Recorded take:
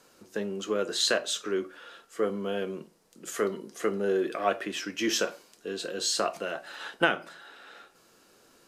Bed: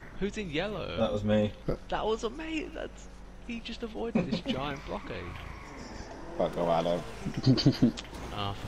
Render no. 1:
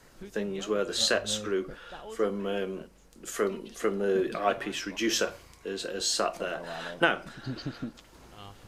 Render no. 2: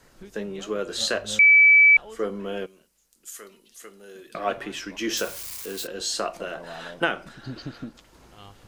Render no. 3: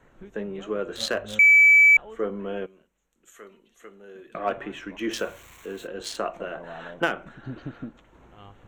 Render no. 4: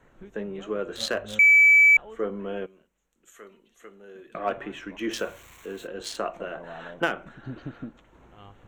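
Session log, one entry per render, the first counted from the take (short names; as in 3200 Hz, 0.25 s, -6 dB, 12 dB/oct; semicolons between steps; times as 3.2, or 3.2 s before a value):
add bed -13 dB
1.39–1.97 bleep 2300 Hz -10.5 dBFS; 2.66–4.35 pre-emphasis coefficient 0.9; 5.17–5.87 switching spikes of -27.5 dBFS
Wiener smoothing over 9 samples
gain -1 dB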